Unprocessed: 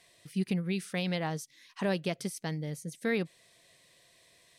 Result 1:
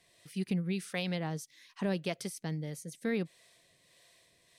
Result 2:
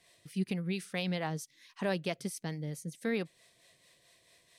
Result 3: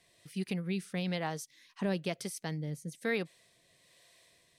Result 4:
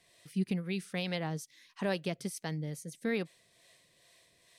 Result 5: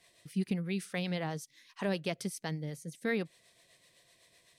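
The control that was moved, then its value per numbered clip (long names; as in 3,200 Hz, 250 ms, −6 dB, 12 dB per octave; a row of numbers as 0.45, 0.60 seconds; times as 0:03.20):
two-band tremolo in antiphase, speed: 1.6, 4.5, 1.1, 2.3, 7.9 Hertz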